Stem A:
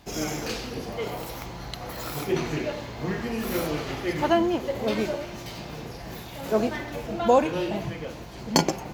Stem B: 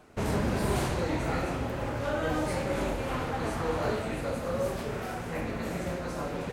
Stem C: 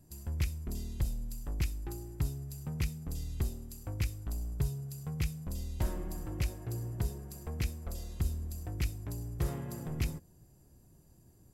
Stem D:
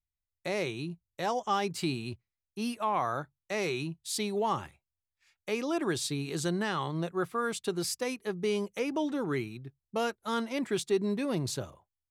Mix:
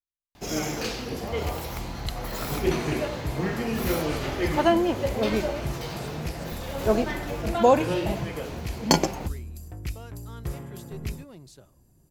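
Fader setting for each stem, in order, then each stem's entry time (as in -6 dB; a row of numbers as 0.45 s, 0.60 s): +1.0 dB, -9.0 dB, 0.0 dB, -15.5 dB; 0.35 s, 2.15 s, 1.05 s, 0.00 s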